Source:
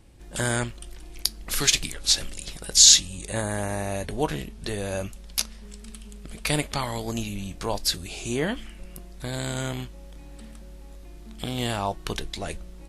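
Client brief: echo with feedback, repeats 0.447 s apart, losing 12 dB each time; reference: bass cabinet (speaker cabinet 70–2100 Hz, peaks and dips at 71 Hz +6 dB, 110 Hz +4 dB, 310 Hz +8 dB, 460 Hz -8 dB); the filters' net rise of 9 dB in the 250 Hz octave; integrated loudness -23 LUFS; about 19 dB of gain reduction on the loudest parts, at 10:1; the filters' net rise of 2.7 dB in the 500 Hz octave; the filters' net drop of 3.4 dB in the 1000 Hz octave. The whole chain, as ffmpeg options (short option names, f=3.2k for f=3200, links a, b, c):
-af "equalizer=f=250:t=o:g=5.5,equalizer=f=500:t=o:g=7,equalizer=f=1k:t=o:g=-8,acompressor=threshold=-29dB:ratio=10,highpass=f=70:w=0.5412,highpass=f=70:w=1.3066,equalizer=f=71:t=q:w=4:g=6,equalizer=f=110:t=q:w=4:g=4,equalizer=f=310:t=q:w=4:g=8,equalizer=f=460:t=q:w=4:g=-8,lowpass=f=2.1k:w=0.5412,lowpass=f=2.1k:w=1.3066,aecho=1:1:447|894|1341:0.251|0.0628|0.0157,volume=13dB"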